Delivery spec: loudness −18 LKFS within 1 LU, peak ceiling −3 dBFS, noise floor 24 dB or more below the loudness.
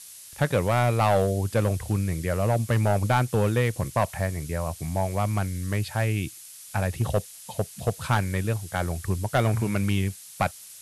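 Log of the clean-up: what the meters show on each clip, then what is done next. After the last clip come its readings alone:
share of clipped samples 1.1%; peaks flattened at −15.0 dBFS; background noise floor −45 dBFS; target noise floor −50 dBFS; integrated loudness −26.0 LKFS; sample peak −15.0 dBFS; target loudness −18.0 LKFS
→ clipped peaks rebuilt −15 dBFS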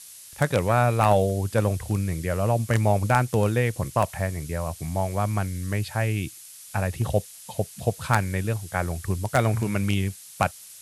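share of clipped samples 0.0%; background noise floor −45 dBFS; target noise floor −50 dBFS
→ noise reduction from a noise print 6 dB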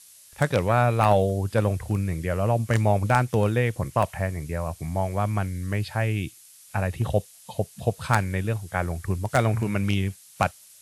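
background noise floor −51 dBFS; integrated loudness −25.5 LKFS; sample peak −6.0 dBFS; target loudness −18.0 LKFS
→ level +7.5 dB
brickwall limiter −3 dBFS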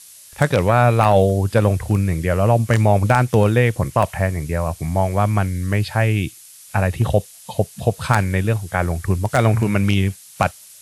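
integrated loudness −18.5 LKFS; sample peak −3.0 dBFS; background noise floor −44 dBFS

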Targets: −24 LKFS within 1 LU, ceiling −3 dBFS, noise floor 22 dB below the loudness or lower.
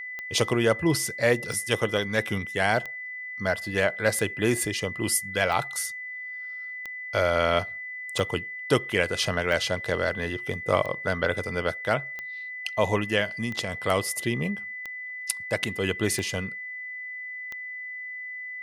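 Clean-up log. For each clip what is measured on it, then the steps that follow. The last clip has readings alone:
number of clicks 14; interfering tone 2,000 Hz; level of the tone −34 dBFS; integrated loudness −27.5 LKFS; sample peak −8.0 dBFS; target loudness −24.0 LKFS
→ click removal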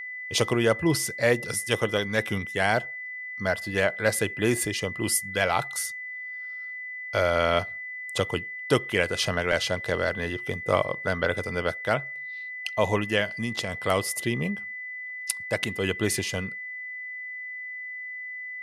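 number of clicks 0; interfering tone 2,000 Hz; level of the tone −34 dBFS
→ notch filter 2,000 Hz, Q 30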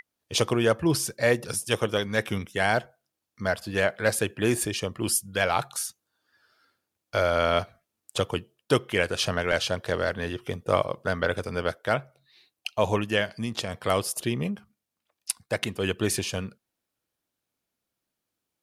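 interfering tone none found; integrated loudness −27.0 LKFS; sample peak −8.0 dBFS; target loudness −24.0 LKFS
→ level +3 dB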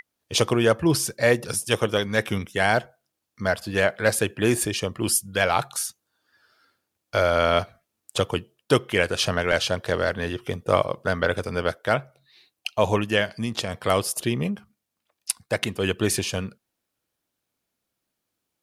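integrated loudness −24.0 LKFS; sample peak −5.0 dBFS; background noise floor −81 dBFS

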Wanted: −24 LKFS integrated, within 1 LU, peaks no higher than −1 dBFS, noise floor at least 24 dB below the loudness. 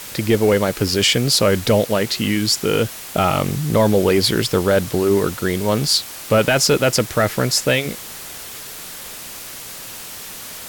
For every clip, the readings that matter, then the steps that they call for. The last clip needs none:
background noise floor −34 dBFS; target noise floor −42 dBFS; integrated loudness −17.5 LKFS; sample peak −6.0 dBFS; target loudness −24.0 LKFS
→ broadband denoise 8 dB, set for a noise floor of −34 dBFS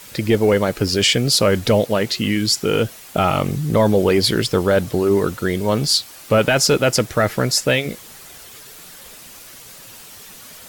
background noise floor −41 dBFS; target noise floor −42 dBFS
→ broadband denoise 6 dB, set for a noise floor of −41 dBFS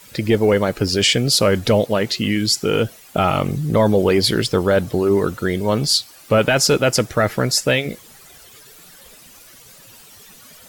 background noise floor −45 dBFS; integrated loudness −17.5 LKFS; sample peak −6.0 dBFS; target loudness −24.0 LKFS
→ level −6.5 dB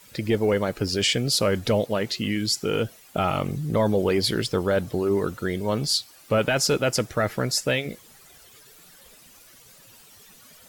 integrated loudness −24.0 LKFS; sample peak −12.5 dBFS; background noise floor −51 dBFS

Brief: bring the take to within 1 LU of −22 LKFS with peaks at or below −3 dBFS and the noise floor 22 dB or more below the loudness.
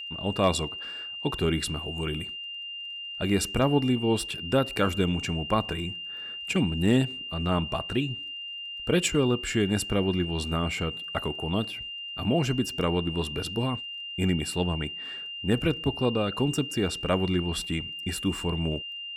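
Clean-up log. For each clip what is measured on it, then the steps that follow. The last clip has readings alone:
crackle rate 20 per second; interfering tone 2,800 Hz; level of the tone −35 dBFS; integrated loudness −28.0 LKFS; sample peak −11.5 dBFS; target loudness −22.0 LKFS
→ click removal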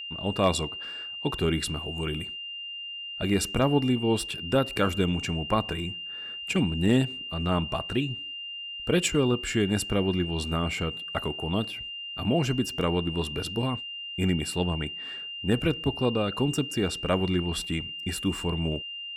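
crackle rate 0.26 per second; interfering tone 2,800 Hz; level of the tone −35 dBFS
→ notch filter 2,800 Hz, Q 30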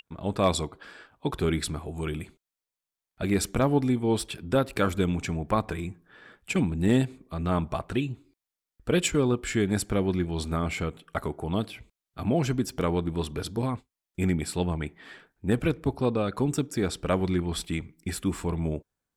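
interfering tone none found; integrated loudness −28.5 LKFS; sample peak −12.0 dBFS; target loudness −22.0 LKFS
→ level +6.5 dB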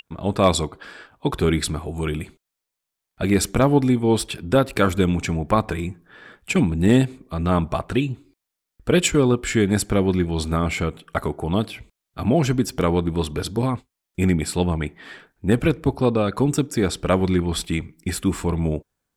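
integrated loudness −22.0 LKFS; sample peak −5.5 dBFS; background noise floor −84 dBFS

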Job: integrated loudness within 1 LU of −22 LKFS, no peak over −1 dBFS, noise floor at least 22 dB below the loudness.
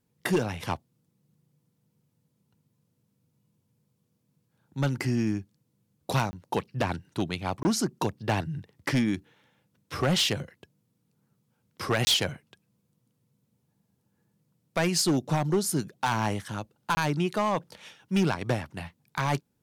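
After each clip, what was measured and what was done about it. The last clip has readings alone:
share of clipped samples 0.7%; peaks flattened at −18.5 dBFS; number of dropouts 4; longest dropout 20 ms; integrated loudness −28.5 LKFS; sample peak −18.5 dBFS; target loudness −22.0 LKFS
→ clipped peaks rebuilt −18.5 dBFS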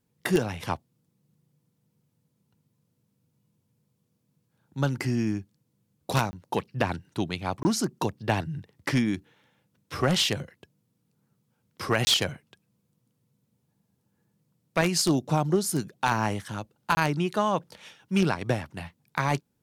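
share of clipped samples 0.0%; number of dropouts 4; longest dropout 20 ms
→ repair the gap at 0:06.31/0:07.63/0:12.05/0:16.95, 20 ms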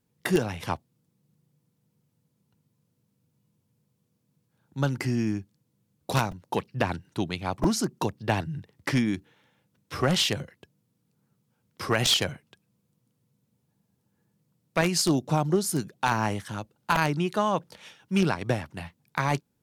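number of dropouts 0; integrated loudness −27.5 LKFS; sample peak −9.5 dBFS; target loudness −22.0 LKFS
→ level +5.5 dB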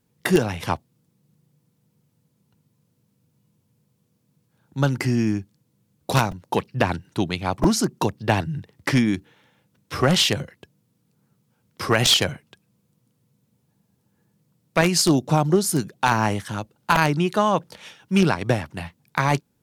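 integrated loudness −22.0 LKFS; sample peak −4.0 dBFS; background noise floor −69 dBFS

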